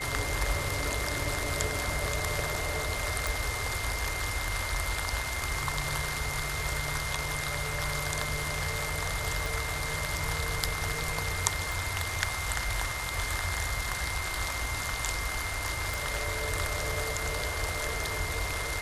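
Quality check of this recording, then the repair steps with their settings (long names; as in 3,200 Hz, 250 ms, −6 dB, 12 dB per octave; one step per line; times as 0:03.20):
whistle 2,100 Hz −36 dBFS
0:03.27: click
0:09.46: click
0:11.72: click
0:15.94: click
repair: click removal
notch filter 2,100 Hz, Q 30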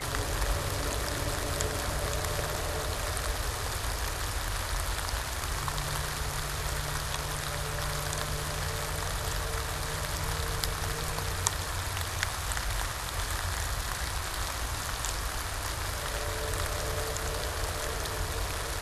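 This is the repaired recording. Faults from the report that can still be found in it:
0:09.46: click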